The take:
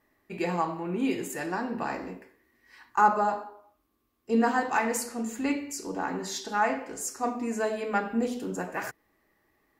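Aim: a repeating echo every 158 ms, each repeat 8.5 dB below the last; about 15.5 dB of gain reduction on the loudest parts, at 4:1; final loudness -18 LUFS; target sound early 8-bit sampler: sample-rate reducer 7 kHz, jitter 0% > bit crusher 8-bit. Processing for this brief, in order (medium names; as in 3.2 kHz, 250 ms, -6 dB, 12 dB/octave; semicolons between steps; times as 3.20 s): compression 4:1, threshold -35 dBFS; feedback delay 158 ms, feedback 38%, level -8.5 dB; sample-rate reducer 7 kHz, jitter 0%; bit crusher 8-bit; trim +19.5 dB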